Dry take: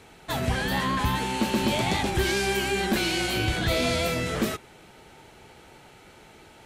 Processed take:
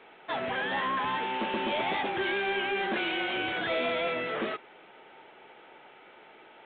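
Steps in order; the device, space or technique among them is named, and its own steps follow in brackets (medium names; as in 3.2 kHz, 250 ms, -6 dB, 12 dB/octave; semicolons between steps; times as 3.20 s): telephone (band-pass 390–3300 Hz; saturation -21.5 dBFS, distortion -19 dB; A-law 64 kbps 8 kHz)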